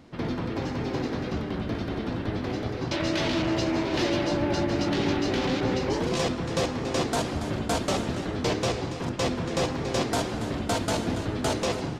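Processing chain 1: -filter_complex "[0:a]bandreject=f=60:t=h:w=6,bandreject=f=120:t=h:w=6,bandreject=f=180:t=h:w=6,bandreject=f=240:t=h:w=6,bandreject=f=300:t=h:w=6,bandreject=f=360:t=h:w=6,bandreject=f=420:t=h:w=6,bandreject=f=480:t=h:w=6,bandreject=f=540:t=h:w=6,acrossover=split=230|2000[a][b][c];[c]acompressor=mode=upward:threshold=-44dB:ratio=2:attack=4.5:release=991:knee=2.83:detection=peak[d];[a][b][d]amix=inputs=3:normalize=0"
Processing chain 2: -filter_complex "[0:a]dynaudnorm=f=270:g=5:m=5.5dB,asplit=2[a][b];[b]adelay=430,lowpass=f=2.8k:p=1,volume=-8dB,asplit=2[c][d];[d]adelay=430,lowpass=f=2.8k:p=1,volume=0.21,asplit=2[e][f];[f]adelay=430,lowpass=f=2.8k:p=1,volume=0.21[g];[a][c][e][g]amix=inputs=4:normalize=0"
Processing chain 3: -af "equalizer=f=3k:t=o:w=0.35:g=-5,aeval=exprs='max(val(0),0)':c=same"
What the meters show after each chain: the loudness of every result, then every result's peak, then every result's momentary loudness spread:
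-28.5, -22.0, -32.5 LUFS; -13.5, -9.0, -16.0 dBFS; 5, 5, 5 LU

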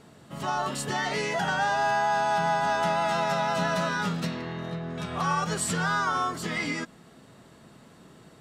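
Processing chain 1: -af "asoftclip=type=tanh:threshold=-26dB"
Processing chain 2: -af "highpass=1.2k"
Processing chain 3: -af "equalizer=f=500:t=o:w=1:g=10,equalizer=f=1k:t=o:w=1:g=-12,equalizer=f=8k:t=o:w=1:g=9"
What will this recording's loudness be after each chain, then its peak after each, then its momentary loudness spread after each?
-31.0, -31.0, -27.5 LUFS; -26.0, -18.0, -10.0 dBFS; 7, 12, 9 LU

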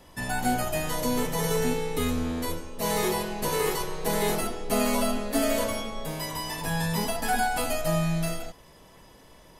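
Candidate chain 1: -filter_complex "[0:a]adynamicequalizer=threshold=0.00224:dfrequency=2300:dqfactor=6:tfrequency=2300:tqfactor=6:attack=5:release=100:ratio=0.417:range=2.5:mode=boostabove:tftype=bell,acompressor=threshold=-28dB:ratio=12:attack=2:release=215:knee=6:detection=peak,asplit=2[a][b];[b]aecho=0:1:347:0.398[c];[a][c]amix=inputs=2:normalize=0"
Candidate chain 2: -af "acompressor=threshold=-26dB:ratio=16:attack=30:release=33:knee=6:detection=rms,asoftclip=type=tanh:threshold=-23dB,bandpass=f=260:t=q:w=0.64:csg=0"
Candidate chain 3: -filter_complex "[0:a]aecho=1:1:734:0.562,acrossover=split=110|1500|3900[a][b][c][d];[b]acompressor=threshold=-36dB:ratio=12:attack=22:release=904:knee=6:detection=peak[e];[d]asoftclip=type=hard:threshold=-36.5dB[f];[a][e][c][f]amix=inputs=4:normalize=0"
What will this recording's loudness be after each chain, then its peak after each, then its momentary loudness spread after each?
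-34.0, -35.5, -33.0 LUFS; -21.5, -23.0, -18.0 dBFS; 4, 6, 4 LU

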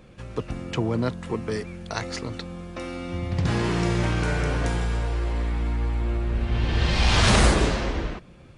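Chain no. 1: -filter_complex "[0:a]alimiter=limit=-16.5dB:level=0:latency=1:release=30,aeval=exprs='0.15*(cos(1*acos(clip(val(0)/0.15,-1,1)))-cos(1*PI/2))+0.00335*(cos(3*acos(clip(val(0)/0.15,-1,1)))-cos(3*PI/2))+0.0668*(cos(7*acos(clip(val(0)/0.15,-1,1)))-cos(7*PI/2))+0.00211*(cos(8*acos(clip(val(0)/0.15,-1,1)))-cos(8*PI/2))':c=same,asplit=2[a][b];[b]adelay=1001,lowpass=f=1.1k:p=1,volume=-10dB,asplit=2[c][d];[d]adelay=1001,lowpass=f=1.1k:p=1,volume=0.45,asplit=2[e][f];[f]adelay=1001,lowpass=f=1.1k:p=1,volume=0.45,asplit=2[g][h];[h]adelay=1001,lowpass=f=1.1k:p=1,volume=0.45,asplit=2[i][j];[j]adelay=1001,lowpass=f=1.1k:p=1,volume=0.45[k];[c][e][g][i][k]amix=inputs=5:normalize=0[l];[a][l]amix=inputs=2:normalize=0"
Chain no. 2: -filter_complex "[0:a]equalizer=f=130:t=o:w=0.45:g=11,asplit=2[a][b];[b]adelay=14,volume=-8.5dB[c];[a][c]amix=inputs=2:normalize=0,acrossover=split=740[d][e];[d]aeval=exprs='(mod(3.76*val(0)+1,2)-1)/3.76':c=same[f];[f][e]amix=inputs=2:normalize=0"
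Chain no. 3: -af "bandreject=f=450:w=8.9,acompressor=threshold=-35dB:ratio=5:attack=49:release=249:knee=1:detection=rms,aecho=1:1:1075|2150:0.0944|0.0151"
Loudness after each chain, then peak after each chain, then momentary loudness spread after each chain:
-24.5, -22.5, -37.5 LUFS; -11.0, -5.5, -19.0 dBFS; 10, 14, 3 LU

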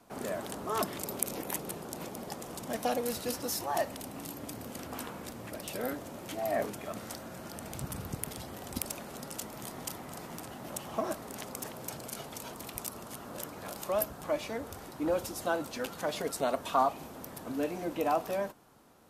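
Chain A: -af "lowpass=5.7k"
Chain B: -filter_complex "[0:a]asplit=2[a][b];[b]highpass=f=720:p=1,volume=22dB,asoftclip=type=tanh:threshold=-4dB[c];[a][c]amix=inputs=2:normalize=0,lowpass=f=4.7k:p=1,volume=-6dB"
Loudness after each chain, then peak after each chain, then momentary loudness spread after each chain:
-37.0, -25.0 LUFS; -14.5, -8.0 dBFS; 12, 11 LU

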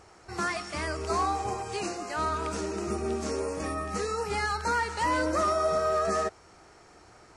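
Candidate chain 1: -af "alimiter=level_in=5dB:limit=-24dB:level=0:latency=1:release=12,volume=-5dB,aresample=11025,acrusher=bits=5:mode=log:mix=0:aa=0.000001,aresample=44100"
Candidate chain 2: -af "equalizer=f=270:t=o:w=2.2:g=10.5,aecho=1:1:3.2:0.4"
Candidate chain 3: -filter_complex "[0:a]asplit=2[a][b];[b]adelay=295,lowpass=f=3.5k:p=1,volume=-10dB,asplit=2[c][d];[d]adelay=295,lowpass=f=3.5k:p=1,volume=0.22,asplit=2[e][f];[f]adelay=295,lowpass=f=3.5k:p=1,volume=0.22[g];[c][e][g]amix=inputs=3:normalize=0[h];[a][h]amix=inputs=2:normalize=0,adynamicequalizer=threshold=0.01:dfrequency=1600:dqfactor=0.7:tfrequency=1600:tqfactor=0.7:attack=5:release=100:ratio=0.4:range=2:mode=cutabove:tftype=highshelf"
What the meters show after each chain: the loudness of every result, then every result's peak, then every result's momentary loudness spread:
-37.0, -23.5, -30.0 LUFS; -28.0, -10.0, -17.5 dBFS; 10, 8, 7 LU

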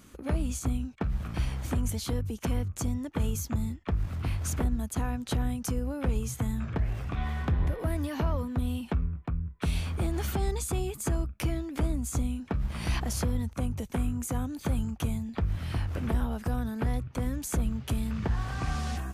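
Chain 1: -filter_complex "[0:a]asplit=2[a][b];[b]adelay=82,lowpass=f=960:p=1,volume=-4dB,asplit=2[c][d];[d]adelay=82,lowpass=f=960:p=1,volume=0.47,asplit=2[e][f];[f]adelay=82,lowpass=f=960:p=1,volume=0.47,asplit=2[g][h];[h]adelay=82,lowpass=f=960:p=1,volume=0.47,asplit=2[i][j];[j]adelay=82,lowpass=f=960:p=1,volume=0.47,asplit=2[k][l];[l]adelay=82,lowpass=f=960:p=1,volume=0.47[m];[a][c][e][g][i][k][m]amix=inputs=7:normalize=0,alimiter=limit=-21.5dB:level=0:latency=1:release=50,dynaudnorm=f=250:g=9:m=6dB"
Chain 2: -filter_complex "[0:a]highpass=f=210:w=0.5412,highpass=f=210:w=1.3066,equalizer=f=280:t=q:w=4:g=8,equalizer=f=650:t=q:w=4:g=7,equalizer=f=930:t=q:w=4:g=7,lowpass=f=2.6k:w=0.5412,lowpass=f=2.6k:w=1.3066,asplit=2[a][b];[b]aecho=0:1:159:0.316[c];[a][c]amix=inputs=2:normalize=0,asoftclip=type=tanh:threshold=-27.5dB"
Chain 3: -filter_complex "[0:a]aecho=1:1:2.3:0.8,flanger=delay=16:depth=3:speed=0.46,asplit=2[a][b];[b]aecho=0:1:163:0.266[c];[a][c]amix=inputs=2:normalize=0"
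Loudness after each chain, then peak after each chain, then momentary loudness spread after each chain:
-25.5, -36.0, -31.5 LUFS; -15.5, -27.5, -15.5 dBFS; 2, 6, 4 LU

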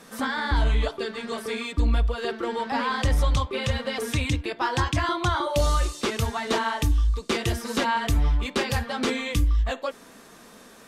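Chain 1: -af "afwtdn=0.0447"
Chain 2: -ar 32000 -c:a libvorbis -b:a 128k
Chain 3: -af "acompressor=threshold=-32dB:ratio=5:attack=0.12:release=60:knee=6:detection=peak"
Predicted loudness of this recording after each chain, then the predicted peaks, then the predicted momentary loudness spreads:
-27.0, -26.0, -37.0 LUFS; -13.0, -13.0, -28.0 dBFS; 6, 6, 2 LU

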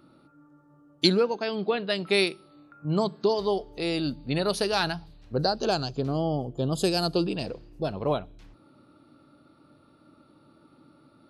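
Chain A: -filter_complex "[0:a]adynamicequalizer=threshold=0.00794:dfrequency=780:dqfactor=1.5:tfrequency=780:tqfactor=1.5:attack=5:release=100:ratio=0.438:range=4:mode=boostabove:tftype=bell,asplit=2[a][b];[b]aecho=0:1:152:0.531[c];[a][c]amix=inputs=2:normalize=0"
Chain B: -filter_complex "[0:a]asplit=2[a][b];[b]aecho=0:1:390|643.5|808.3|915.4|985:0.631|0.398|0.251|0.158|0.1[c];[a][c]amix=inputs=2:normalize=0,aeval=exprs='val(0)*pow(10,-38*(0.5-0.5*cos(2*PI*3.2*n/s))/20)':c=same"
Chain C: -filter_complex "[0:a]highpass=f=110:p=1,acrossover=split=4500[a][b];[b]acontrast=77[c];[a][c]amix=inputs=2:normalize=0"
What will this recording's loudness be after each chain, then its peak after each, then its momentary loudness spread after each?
-24.0, -33.0, -26.5 LUFS; -5.5, -11.5, -4.0 dBFS; 9, 11, 9 LU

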